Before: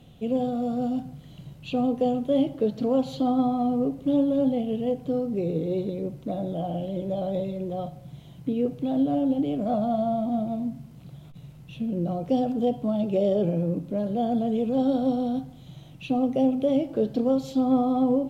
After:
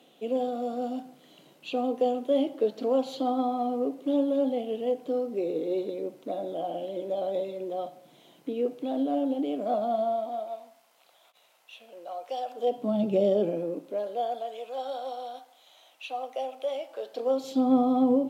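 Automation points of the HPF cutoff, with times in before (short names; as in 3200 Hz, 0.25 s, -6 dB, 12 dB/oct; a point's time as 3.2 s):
HPF 24 dB/oct
10.01 s 300 Hz
10.64 s 640 Hz
12.49 s 640 Hz
13 s 160 Hz
14.54 s 630 Hz
17.02 s 630 Hz
17.71 s 190 Hz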